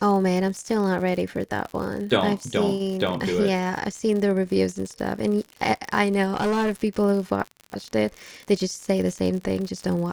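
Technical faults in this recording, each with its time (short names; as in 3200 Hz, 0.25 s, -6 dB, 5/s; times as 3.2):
crackle 69/s -30 dBFS
6.33–6.72 clipped -19.5 dBFS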